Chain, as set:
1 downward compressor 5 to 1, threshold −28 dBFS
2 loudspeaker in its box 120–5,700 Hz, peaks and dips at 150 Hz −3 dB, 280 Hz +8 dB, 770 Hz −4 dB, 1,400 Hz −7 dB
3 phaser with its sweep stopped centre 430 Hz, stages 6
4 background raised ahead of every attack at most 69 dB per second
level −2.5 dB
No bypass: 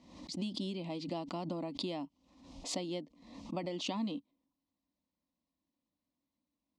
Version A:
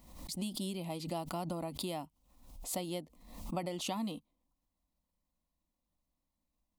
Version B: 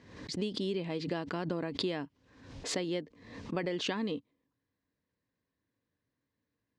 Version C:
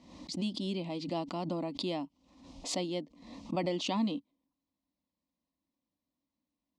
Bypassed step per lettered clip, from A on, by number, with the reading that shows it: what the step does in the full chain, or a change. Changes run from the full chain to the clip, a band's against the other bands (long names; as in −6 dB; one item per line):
2, change in momentary loudness spread +1 LU
3, 2 kHz band +7.0 dB
1, average gain reduction 3.0 dB